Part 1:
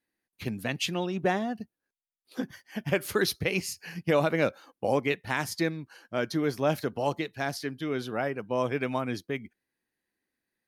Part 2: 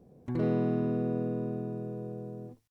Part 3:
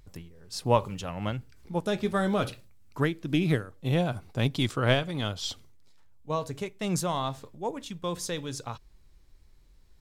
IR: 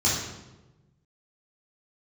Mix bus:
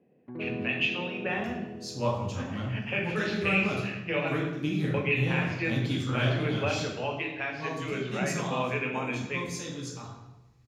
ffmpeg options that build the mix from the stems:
-filter_complex "[0:a]lowpass=f=2600:t=q:w=6.2,volume=0.668,asplit=3[s0][s1][s2];[s0]atrim=end=4.34,asetpts=PTS-STARTPTS,afade=t=out:st=4.336:d=0.004:c=hsin[s3];[s1]atrim=start=4.34:end=4.94,asetpts=PTS-STARTPTS,volume=0[s4];[s2]atrim=start=4.94,asetpts=PTS-STARTPTS,afade=t=in:d=0.004:c=hsin[s5];[s3][s4][s5]concat=n=3:v=0:a=1,asplit=2[s6][s7];[s7]volume=0.141[s8];[1:a]aemphasis=mode=reproduction:type=bsi,volume=0.447[s9];[2:a]adelay=1300,volume=0.335,asplit=2[s10][s11];[s11]volume=0.335[s12];[s6][s9]amix=inputs=2:normalize=0,highpass=260,lowpass=2600,alimiter=limit=0.119:level=0:latency=1:release=416,volume=1[s13];[3:a]atrim=start_sample=2205[s14];[s8][s12]amix=inputs=2:normalize=0[s15];[s15][s14]afir=irnorm=-1:irlink=0[s16];[s10][s13][s16]amix=inputs=3:normalize=0,highpass=43,lowshelf=f=87:g=-8.5"

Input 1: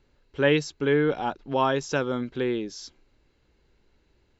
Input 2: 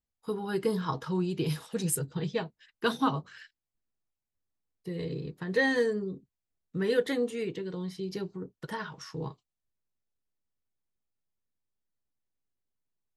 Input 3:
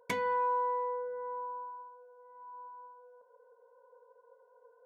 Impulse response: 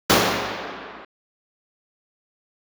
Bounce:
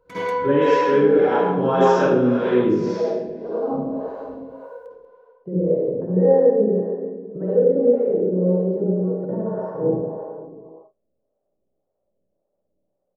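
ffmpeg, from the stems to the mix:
-filter_complex "[0:a]volume=0.422,asplit=2[s0][s1];[s1]volume=0.168[s2];[1:a]acompressor=threshold=0.0251:ratio=6,lowpass=f=600:t=q:w=7.5,adelay=600,volume=0.708,asplit=2[s3][s4];[s4]volume=0.075[s5];[2:a]acontrast=63,volume=0.75,asplit=3[s6][s7][s8];[s7]volume=0.0708[s9];[s8]volume=0.316[s10];[s0][s6]amix=inputs=2:normalize=0,equalizer=f=1300:t=o:w=0.27:g=13.5,alimiter=level_in=1.58:limit=0.0631:level=0:latency=1,volume=0.631,volume=1[s11];[3:a]atrim=start_sample=2205[s12];[s2][s5][s9]amix=inputs=3:normalize=0[s13];[s13][s12]afir=irnorm=-1:irlink=0[s14];[s10]aecho=0:1:189:1[s15];[s3][s11][s14][s15]amix=inputs=4:normalize=0,dynaudnorm=f=710:g=3:m=3.76,acrossover=split=410[s16][s17];[s16]aeval=exprs='val(0)*(1-0.7/2+0.7/2*cos(2*PI*1.8*n/s))':c=same[s18];[s17]aeval=exprs='val(0)*(1-0.7/2-0.7/2*cos(2*PI*1.8*n/s))':c=same[s19];[s18][s19]amix=inputs=2:normalize=0"

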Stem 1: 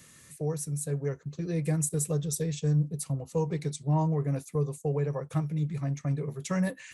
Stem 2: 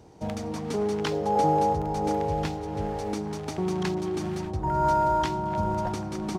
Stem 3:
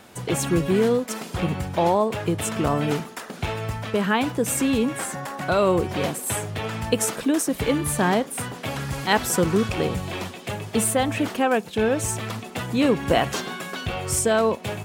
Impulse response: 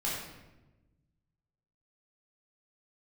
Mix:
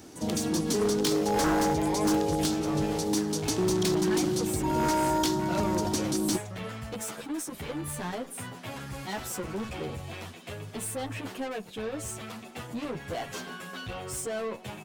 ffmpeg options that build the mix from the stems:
-filter_complex "[0:a]volume=0.178[s0];[1:a]equalizer=f=290:t=o:w=0.98:g=14,aexciter=amount=7.2:drive=4.1:freq=3200,volume=0.531[s1];[2:a]asoftclip=type=tanh:threshold=0.0668,asplit=2[s2][s3];[s3]adelay=9.9,afreqshift=0.39[s4];[s2][s4]amix=inputs=2:normalize=1,volume=0.596[s5];[s0][s1][s5]amix=inputs=3:normalize=0,aeval=exprs='0.106*(abs(mod(val(0)/0.106+3,4)-2)-1)':c=same"

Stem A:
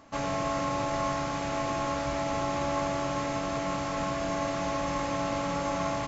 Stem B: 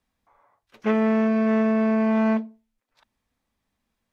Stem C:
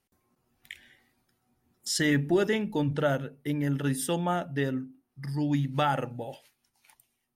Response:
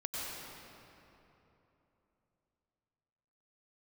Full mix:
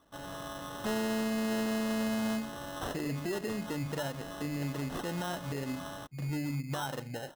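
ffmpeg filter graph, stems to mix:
-filter_complex "[0:a]acontrast=48,volume=0.126[s0];[1:a]equalizer=f=300:t=o:w=0.42:g=-14,asoftclip=type=tanh:threshold=0.0473,volume=1.33[s1];[2:a]adelay=950,volume=0.891[s2];[s0][s1][s2]amix=inputs=3:normalize=0,acrusher=samples=19:mix=1:aa=0.000001,alimiter=level_in=1.58:limit=0.0631:level=0:latency=1:release=179,volume=0.631"

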